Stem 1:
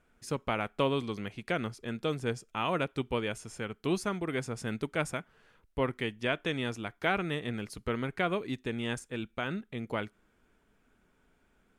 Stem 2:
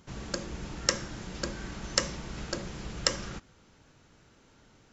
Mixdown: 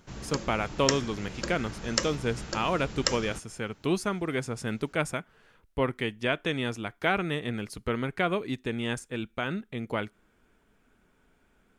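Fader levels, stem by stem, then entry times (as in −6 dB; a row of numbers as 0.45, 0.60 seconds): +3.0, −0.5 decibels; 0.00, 0.00 seconds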